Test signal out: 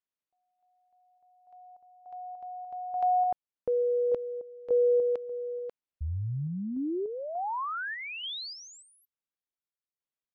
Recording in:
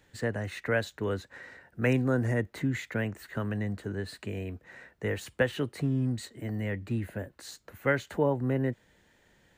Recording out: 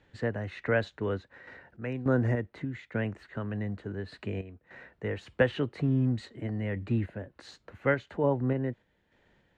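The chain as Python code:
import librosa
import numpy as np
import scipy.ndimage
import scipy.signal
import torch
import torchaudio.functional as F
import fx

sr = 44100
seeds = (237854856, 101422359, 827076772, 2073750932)

y = scipy.signal.sosfilt(scipy.signal.butter(2, 3300.0, 'lowpass', fs=sr, output='sos'), x)
y = fx.peak_eq(y, sr, hz=1800.0, db=-2.0, octaves=0.77)
y = fx.tremolo_random(y, sr, seeds[0], hz=3.4, depth_pct=75)
y = F.gain(torch.from_numpy(y), 3.0).numpy()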